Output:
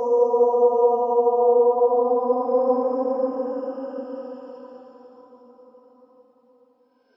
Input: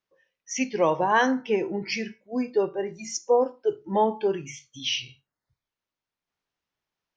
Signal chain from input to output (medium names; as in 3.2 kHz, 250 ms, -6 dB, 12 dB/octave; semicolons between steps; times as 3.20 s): Paulstretch 23×, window 0.10 s, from 3.30 s